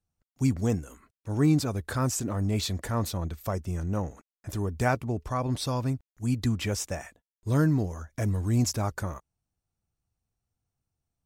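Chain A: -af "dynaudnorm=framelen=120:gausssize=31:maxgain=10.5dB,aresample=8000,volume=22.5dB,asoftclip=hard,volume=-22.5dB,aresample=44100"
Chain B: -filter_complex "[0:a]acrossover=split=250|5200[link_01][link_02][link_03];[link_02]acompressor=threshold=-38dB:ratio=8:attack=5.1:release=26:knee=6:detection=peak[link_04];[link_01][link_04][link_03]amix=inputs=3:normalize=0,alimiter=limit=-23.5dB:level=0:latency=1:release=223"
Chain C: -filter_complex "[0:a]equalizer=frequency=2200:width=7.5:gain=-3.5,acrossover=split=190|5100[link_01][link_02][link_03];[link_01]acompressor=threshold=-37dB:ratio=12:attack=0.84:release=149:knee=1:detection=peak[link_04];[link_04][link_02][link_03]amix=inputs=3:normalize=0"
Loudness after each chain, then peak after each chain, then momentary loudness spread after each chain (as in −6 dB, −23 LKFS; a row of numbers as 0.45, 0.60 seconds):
−27.5, −34.5, −32.0 LKFS; −17.0, −23.5, −11.5 dBFS; 7, 8, 11 LU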